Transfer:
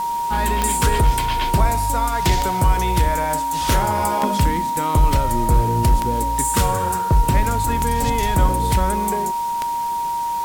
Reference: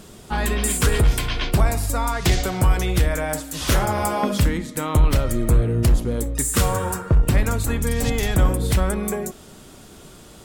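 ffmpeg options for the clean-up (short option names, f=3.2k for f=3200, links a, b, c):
-af "adeclick=t=4,bandreject=f=940:w=30,afwtdn=0.011"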